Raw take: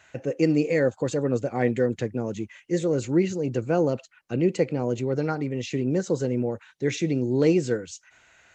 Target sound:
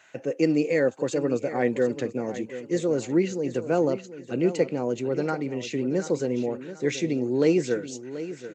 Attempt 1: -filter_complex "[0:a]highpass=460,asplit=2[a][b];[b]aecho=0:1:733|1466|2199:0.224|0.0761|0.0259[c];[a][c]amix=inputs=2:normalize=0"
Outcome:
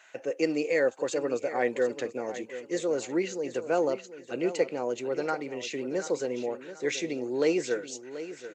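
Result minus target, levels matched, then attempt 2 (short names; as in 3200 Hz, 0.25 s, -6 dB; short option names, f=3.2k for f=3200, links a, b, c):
250 Hz band -3.5 dB
-filter_complex "[0:a]highpass=190,asplit=2[a][b];[b]aecho=0:1:733|1466|2199:0.224|0.0761|0.0259[c];[a][c]amix=inputs=2:normalize=0"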